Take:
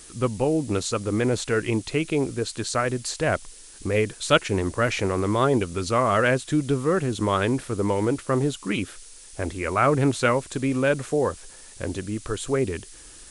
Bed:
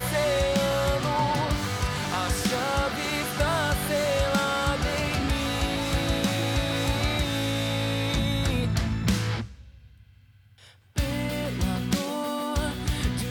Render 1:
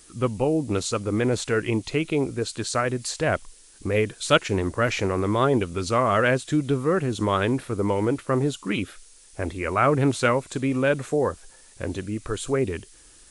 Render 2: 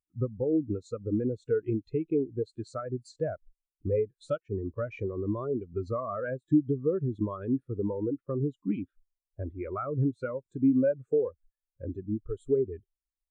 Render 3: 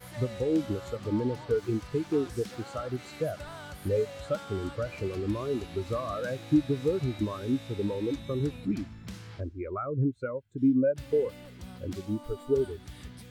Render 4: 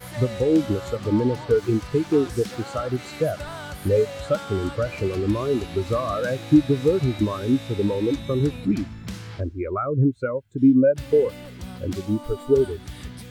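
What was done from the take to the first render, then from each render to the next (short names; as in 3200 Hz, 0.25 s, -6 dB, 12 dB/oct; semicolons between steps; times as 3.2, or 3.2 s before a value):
noise print and reduce 6 dB
compressor 20:1, threshold -24 dBFS, peak gain reduction 13.5 dB; spectral expander 2.5:1
add bed -18 dB
gain +8 dB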